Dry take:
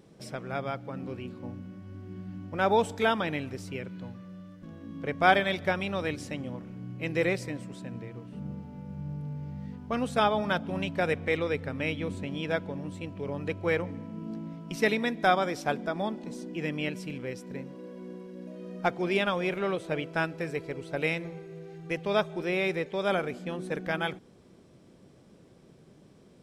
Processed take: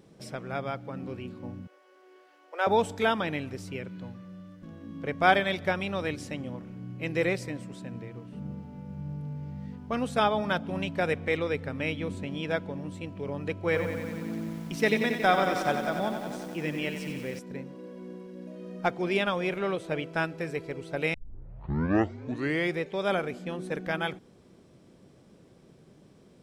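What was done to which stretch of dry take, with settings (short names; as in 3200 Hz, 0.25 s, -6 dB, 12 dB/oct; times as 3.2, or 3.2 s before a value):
1.67–2.67 elliptic high-pass 410 Hz, stop band 50 dB
13.64–17.39 lo-fi delay 91 ms, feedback 80%, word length 8-bit, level -8 dB
21.14 tape start 1.66 s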